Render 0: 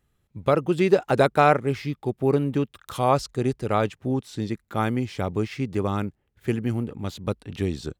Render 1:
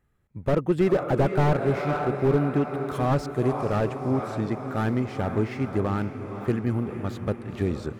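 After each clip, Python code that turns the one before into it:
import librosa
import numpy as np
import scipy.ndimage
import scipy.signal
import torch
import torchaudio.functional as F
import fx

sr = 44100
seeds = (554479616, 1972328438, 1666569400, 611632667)

y = fx.high_shelf_res(x, sr, hz=2500.0, db=-6.5, q=1.5)
y = fx.echo_diffused(y, sr, ms=487, feedback_pct=59, wet_db=-10.5)
y = fx.slew_limit(y, sr, full_power_hz=61.0)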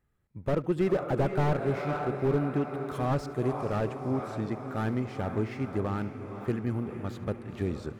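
y = x + 10.0 ** (-20.5 / 20.0) * np.pad(x, (int(73 * sr / 1000.0), 0))[:len(x)]
y = y * 10.0 ** (-5.0 / 20.0)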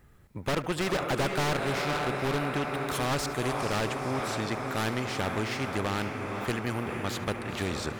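y = fx.spectral_comp(x, sr, ratio=2.0)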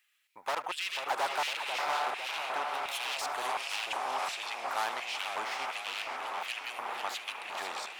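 y = fx.low_shelf(x, sr, hz=120.0, db=4.0)
y = fx.filter_lfo_highpass(y, sr, shape='square', hz=1.4, low_hz=840.0, high_hz=2700.0, q=2.9)
y = fx.echo_warbled(y, sr, ms=498, feedback_pct=54, rate_hz=2.8, cents=209, wet_db=-8.0)
y = y * 10.0 ** (-5.0 / 20.0)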